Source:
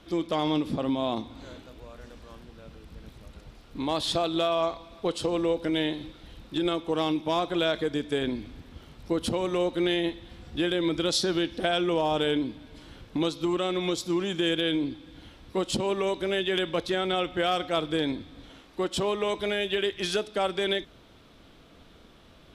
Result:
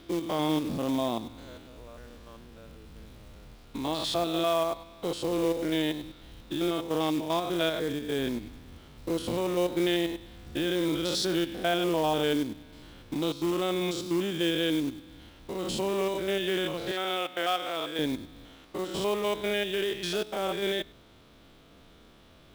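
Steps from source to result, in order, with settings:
spectrum averaged block by block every 100 ms
0:16.91–0:17.99: meter weighting curve A
floating-point word with a short mantissa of 2 bits

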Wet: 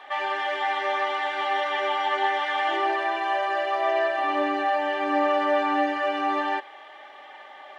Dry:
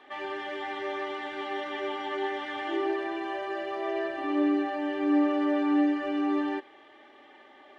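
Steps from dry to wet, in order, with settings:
low shelf with overshoot 470 Hz −12 dB, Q 1.5
level +8.5 dB

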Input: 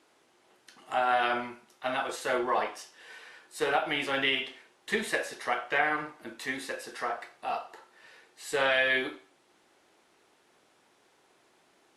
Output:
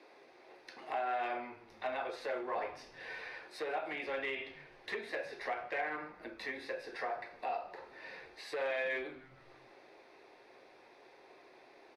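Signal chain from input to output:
convolution reverb RT60 0.30 s, pre-delay 3 ms, DRR 10 dB
downward compressor 2.5 to 1, threshold −44 dBFS, peak gain reduction 18 dB
gain into a clipping stage and back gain 32.5 dB
three-way crossover with the lows and the highs turned down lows −20 dB, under 480 Hz, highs −17 dB, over 2,800 Hz
echo with shifted repeats 154 ms, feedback 65%, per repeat −130 Hz, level −23 dB
level +5.5 dB

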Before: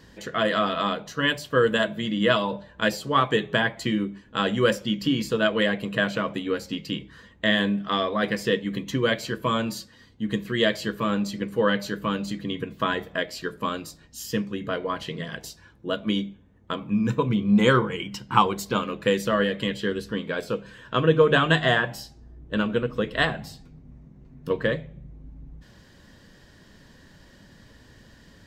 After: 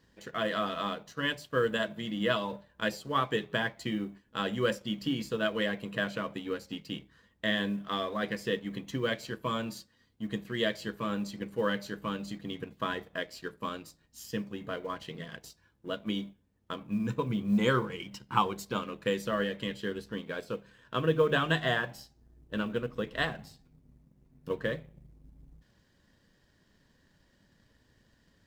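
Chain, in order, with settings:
mu-law and A-law mismatch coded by A
level −7.5 dB

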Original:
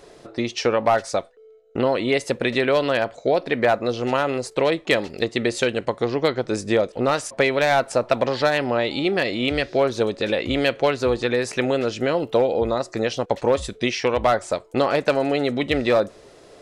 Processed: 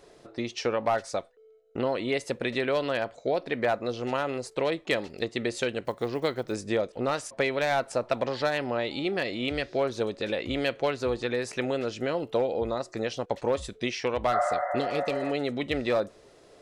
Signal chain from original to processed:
0:05.85–0:06.56: one scale factor per block 7 bits
0:14.35–0:15.28: healed spectral selection 530–2,100 Hz both
level −7.5 dB

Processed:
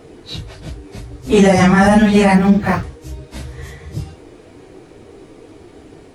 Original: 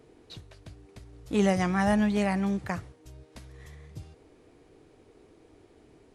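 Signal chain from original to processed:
random phases in long frames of 100 ms
boost into a limiter +17.5 dB
0:02.35–0:02.83: linearly interpolated sample-rate reduction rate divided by 4×
level −1 dB

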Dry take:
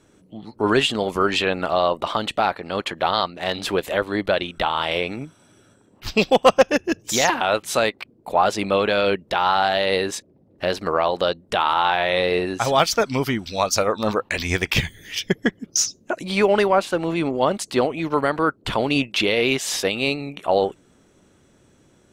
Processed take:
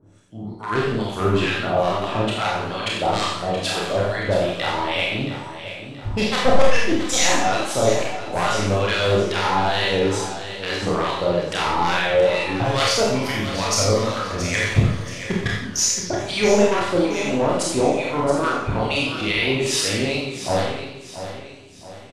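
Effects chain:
wavefolder on the positive side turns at −13 dBFS
low-pass filter 11,000 Hz 24 dB per octave
parametric band 100 Hz +11.5 dB 0.65 octaves
in parallel at −2 dB: output level in coarse steps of 14 dB
on the sum: two-band tremolo in antiphase 2.3 Hz, depth 100%, crossover 1,000 Hz
double-tracking delay 28 ms −4 dB
repeating echo 675 ms, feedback 42%, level −11.5 dB
four-comb reverb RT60 0.51 s, combs from 31 ms, DRR −1.5 dB
feedback echo with a swinging delay time 90 ms, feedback 52%, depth 183 cents, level −11 dB
level −3 dB

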